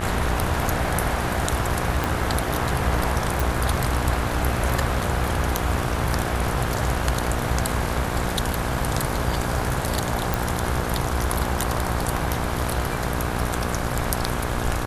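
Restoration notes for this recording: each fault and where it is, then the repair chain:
buzz 60 Hz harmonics 28 -28 dBFS
2.04 s: pop
3.40 s: pop
10.34 s: pop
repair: de-click; de-hum 60 Hz, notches 28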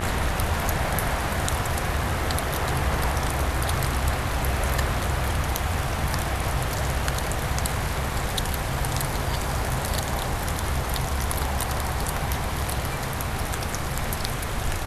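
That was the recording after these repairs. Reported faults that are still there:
2.04 s: pop

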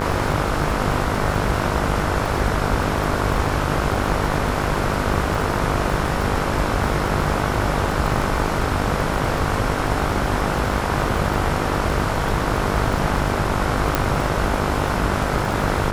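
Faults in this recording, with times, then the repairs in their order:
buzz 50 Hz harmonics 31 -25 dBFS
crackle 49 per s -25 dBFS
13.95 s: pop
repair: de-click; de-hum 50 Hz, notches 31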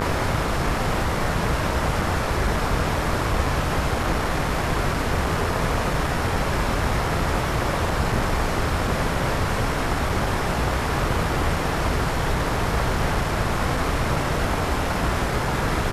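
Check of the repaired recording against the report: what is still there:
nothing left

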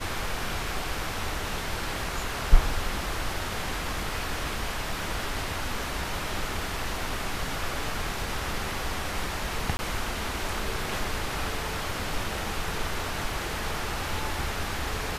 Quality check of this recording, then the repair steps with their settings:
9.77–9.79 s: dropout 20 ms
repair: interpolate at 9.77 s, 20 ms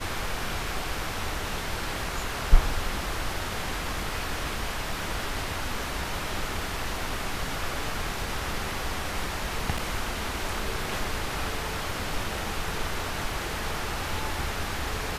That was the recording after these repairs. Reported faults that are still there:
nothing left

